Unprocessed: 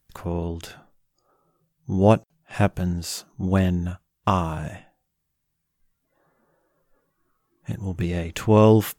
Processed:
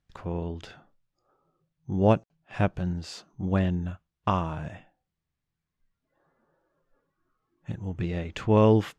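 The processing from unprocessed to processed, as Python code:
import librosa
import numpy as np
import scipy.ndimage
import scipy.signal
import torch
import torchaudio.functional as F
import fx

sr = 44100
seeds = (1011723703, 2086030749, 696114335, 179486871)

y = scipy.signal.sosfilt(scipy.signal.butter(2, 4400.0, 'lowpass', fs=sr, output='sos'), x)
y = F.gain(torch.from_numpy(y), -4.5).numpy()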